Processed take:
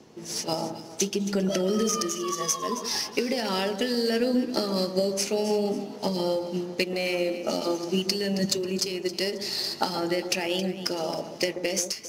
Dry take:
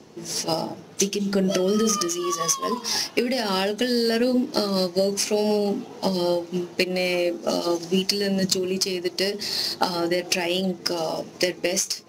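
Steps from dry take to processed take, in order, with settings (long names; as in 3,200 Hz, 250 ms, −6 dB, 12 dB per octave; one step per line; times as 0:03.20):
delay that swaps between a low-pass and a high-pass 135 ms, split 1,400 Hz, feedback 59%, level −8.5 dB
level −4 dB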